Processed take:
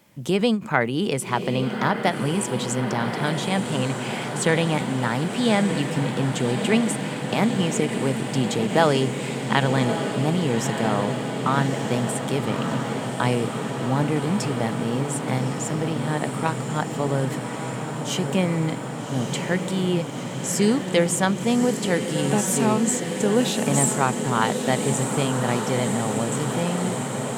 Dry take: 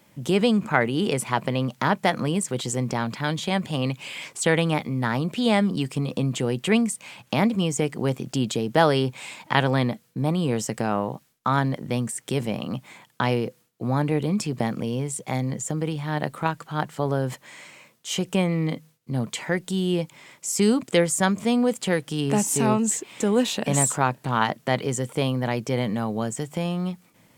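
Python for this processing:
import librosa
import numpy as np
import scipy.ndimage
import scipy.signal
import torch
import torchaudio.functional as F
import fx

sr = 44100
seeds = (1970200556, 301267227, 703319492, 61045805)

y = fx.echo_diffused(x, sr, ms=1194, feedback_pct=79, wet_db=-7.0)
y = fx.end_taper(y, sr, db_per_s=220.0)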